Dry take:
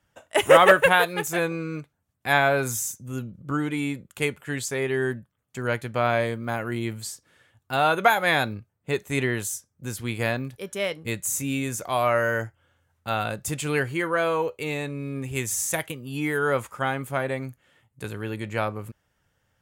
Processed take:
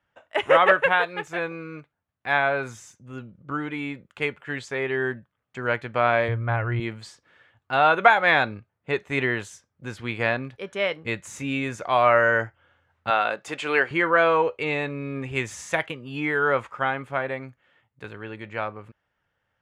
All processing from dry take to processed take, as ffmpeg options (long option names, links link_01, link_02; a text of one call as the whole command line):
ffmpeg -i in.wav -filter_complex "[0:a]asettb=1/sr,asplit=3[link_01][link_02][link_03];[link_01]atrim=end=6.284[link_04];[link_02]atrim=start=6.28:end=6.8,asetpts=PTS-STARTPTS,afade=type=in:duration=0.004:curve=qsin,afade=type=out:start_time=0.516:duration=0.004:curve=qsin,lowpass=3000,lowshelf=frequency=140:width_type=q:width=3:gain=9[link_05];[link_03]atrim=start=6.796[link_06];[link_04][link_05]acrossfade=duration=0.004:curve1=hsin:curve2=qsin[link_07];[link_07][link_06]acrossfade=duration=0.004:curve1=qsin:curve2=hsin,asettb=1/sr,asplit=3[link_08][link_09][link_10];[link_08]atrim=end=13.104[link_11];[link_09]atrim=start=13.1:end=13.91,asetpts=PTS-STARTPTS,afade=type=in:duration=0.004:curve=qsin,afade=type=out:start_time=0.806:duration=0.004:curve=qsin,highpass=340,highshelf=frequency=12000:gain=-3[link_12];[link_10]atrim=start=13.906[link_13];[link_11][link_12]acrossfade=duration=0.004:curve1=hsin:curve2=qsin[link_14];[link_14][link_13]acrossfade=duration=0.004:curve1=qsin:curve2=hsin,lowpass=2700,lowshelf=frequency=420:gain=-9.5,dynaudnorm=framelen=230:gausssize=31:maxgain=8.5dB" out.wav